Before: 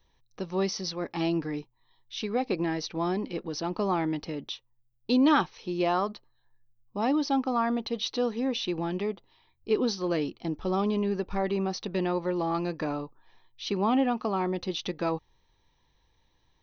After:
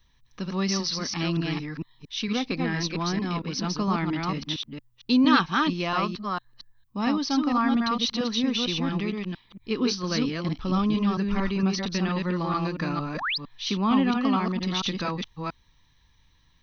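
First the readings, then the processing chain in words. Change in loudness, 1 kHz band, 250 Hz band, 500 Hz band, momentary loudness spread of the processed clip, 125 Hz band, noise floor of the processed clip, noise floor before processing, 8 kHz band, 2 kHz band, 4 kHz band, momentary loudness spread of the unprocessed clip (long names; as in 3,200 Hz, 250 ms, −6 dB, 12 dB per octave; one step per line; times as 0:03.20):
+3.0 dB, +2.0 dB, +4.0 dB, −3.5 dB, 10 LU, +7.0 dB, −63 dBFS, −70 dBFS, can't be measured, +7.5 dB, +7.0 dB, 10 LU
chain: delay that plays each chunk backwards 228 ms, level −2.5 dB
sound drawn into the spectrogram rise, 0:13.14–0:13.38, 380–5,400 Hz −32 dBFS
flat-topped bell 530 Hz −10.5 dB
level +5 dB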